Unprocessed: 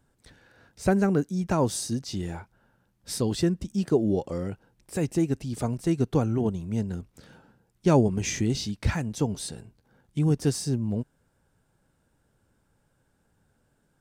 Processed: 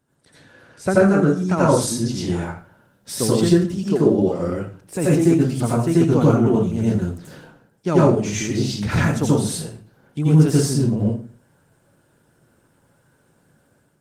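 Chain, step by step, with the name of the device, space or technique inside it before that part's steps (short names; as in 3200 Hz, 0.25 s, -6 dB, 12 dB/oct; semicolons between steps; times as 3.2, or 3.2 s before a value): dynamic EQ 1300 Hz, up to +7 dB, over -55 dBFS, Q 5.3; far-field microphone of a smart speaker (reverb RT60 0.40 s, pre-delay 78 ms, DRR -6 dB; HPF 130 Hz 12 dB/oct; AGC gain up to 7 dB; gain -1 dB; Opus 20 kbps 48000 Hz)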